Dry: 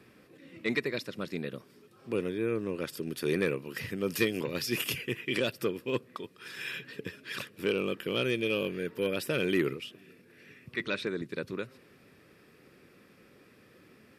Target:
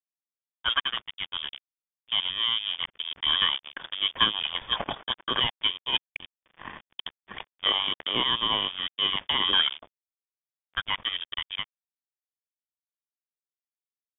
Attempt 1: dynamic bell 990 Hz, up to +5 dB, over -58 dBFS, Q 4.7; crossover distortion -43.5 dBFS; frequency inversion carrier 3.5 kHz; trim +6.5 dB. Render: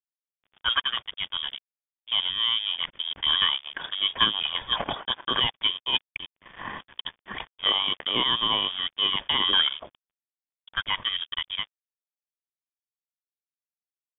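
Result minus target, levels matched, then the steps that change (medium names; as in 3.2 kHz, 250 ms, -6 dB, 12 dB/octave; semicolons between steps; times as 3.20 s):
crossover distortion: distortion -5 dB
change: crossover distortion -37 dBFS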